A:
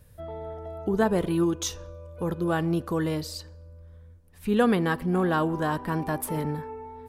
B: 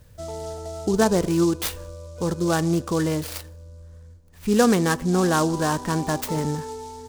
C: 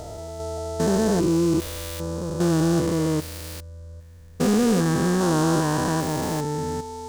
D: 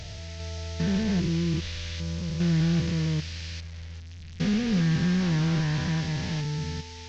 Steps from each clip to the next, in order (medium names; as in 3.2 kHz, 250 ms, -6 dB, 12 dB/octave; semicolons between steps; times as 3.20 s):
delay time shaken by noise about 5.8 kHz, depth 0.049 ms; trim +4 dB
spectrogram pixelated in time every 400 ms; in parallel at -6 dB: hard clipper -21.5 dBFS, distortion -12 dB
one-bit delta coder 32 kbps, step -36 dBFS; high-order bell 580 Hz -14.5 dB 2.7 oct; trim +1 dB